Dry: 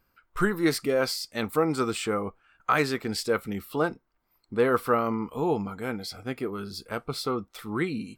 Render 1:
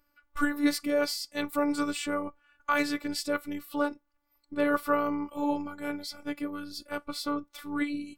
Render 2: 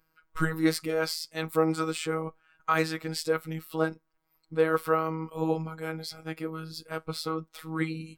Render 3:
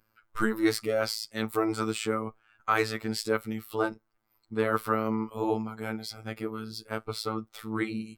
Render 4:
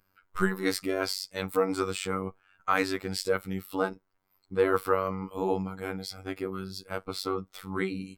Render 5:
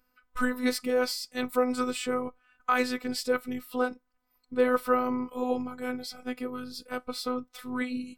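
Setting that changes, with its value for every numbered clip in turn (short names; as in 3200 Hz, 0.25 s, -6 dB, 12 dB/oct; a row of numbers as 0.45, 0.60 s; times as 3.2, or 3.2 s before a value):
robotiser, frequency: 290, 160, 110, 95, 250 Hz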